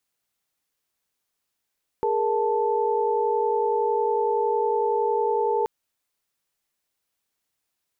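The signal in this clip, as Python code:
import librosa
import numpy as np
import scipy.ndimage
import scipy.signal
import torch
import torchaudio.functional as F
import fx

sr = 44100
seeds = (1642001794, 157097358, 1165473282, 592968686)

y = fx.chord(sr, length_s=3.63, notes=(68, 70, 81), wave='sine', level_db=-24.5)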